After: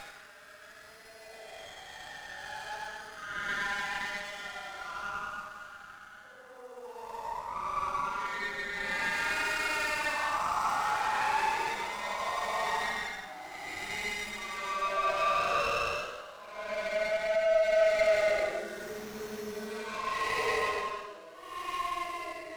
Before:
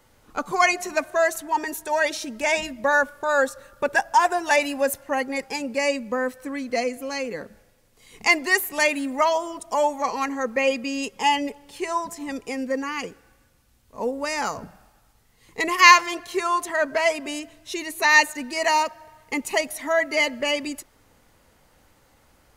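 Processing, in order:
reversed piece by piece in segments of 137 ms
flanger 0.8 Hz, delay 3.7 ms, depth 9.7 ms, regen +45%
delay with pitch and tempo change per echo 90 ms, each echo −5 semitones, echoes 2, each echo −6 dB
reversed playback
downward compressor 16 to 1, threshold −33 dBFS, peak gain reduction 22.5 dB
reversed playback
high-pass filter sweep 1,700 Hz → 560 Hz, 0:13.69–0:15.15
extreme stretch with random phases 9.2×, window 0.10 s, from 0:13.27
in parallel at −1 dB: brickwall limiter −29.5 dBFS, peak gain reduction 10.5 dB
on the sum: dynamic equaliser 2,600 Hz, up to +8 dB, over −51 dBFS, Q 3.8
windowed peak hold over 5 samples

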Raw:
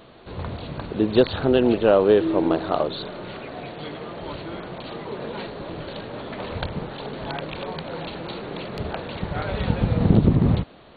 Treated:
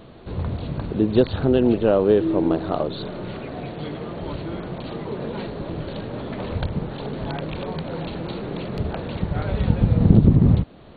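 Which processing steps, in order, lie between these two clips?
low-shelf EQ 390 Hz +10.5 dB
in parallel at −3 dB: downward compressor, threshold −24 dBFS, peak gain reduction 20.5 dB
on the sum: level −6.5 dB

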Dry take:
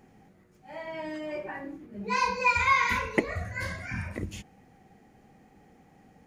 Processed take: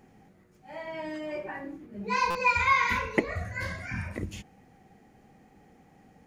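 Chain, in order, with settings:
dynamic equaliser 9,600 Hz, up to −5 dB, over −50 dBFS, Q 0.84
buffer that repeats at 0:02.30, samples 256, times 8

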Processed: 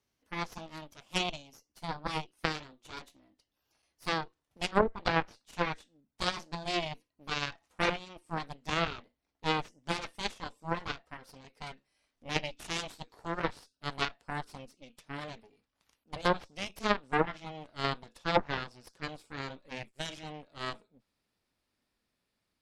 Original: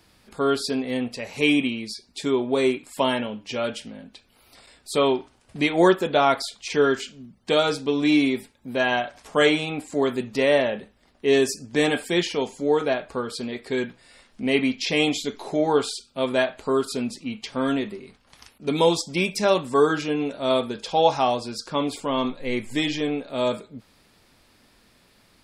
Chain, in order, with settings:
gliding playback speed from 124% → 101%
harmonic generator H 2 −21 dB, 3 −9 dB, 6 −27 dB, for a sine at −5 dBFS
treble cut that deepens with the level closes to 350 Hz, closed at −17.5 dBFS

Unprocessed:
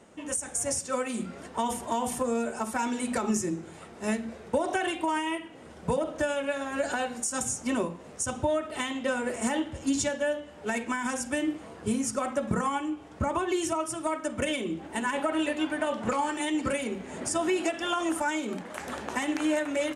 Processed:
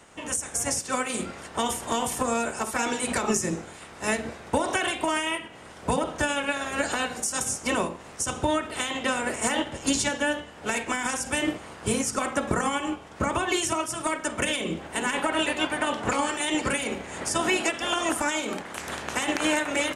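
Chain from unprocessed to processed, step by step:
ceiling on every frequency bin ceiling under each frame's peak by 14 dB
level +2.5 dB

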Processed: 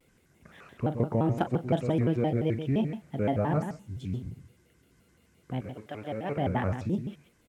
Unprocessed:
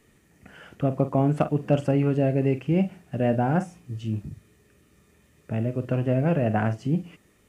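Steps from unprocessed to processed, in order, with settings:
0:05.60–0:06.36: high-pass filter 1,400 Hz → 490 Hz 6 dB per octave
single-tap delay 128 ms −9 dB
pitch modulation by a square or saw wave square 5.8 Hz, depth 250 cents
level −5 dB

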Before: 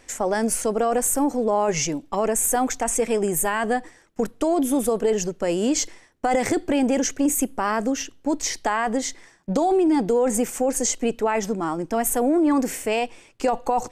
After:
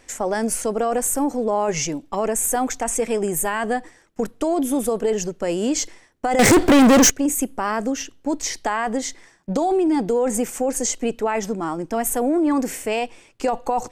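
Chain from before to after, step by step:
0:06.39–0:07.10: leveller curve on the samples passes 5

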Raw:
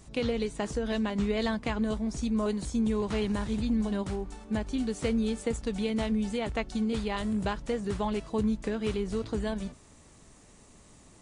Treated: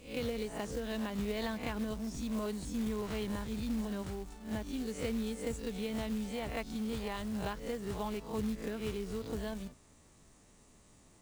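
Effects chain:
peak hold with a rise ahead of every peak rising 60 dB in 0.42 s
floating-point word with a short mantissa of 2 bits
level −8 dB

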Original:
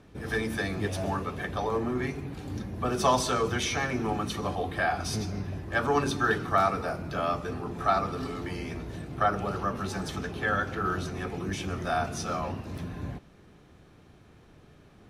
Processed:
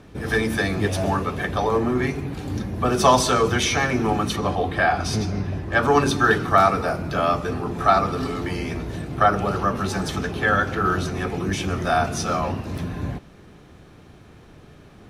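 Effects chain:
0:04.36–0:05.83: high-shelf EQ 8,500 Hz −10 dB
level +8 dB

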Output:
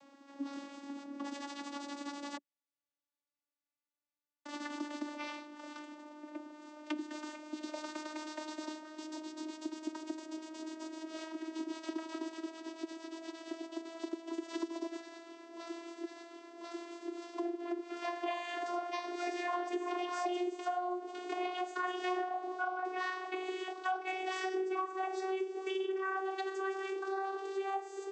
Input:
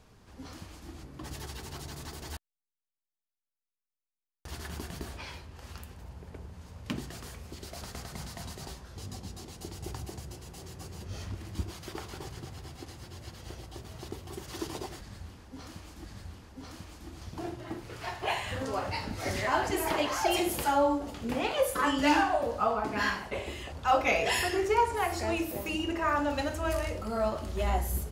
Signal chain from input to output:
vocoder with a gliding carrier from C#4, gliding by +6 semitones
high-pass filter 460 Hz 6 dB per octave
downward compressor 5 to 1, threshold −44 dBFS, peak gain reduction 19.5 dB
level +9 dB

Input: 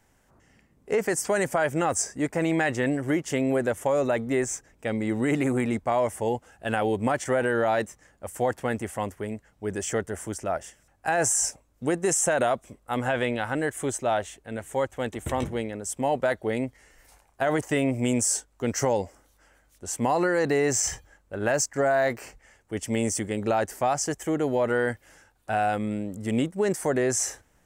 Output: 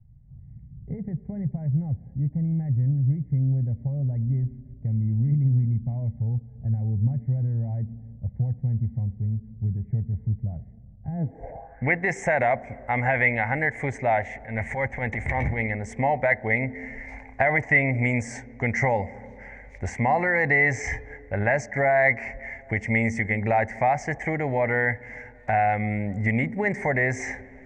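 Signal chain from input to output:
camcorder AGC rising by 9.8 dB per second
high-shelf EQ 3,800 Hz −10 dB
0:14.24–0:15.85: transient designer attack −11 dB, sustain +5 dB
drawn EQ curve 120 Hz 0 dB, 350 Hz −15 dB, 810 Hz −1 dB, 1,300 Hz −16 dB, 2,100 Hz +13 dB, 2,900 Hz −18 dB, 4,300 Hz −21 dB, 9,400 Hz −23 dB
on a send at −20 dB: convolution reverb RT60 2.1 s, pre-delay 3 ms
on the sum: low-pass filter sweep 140 Hz → 6,400 Hz, 0:11.11–0:12.17
in parallel at +2 dB: downward compressor, threshold −41 dBFS, peak gain reduction 18 dB
on the sum: level +5 dB

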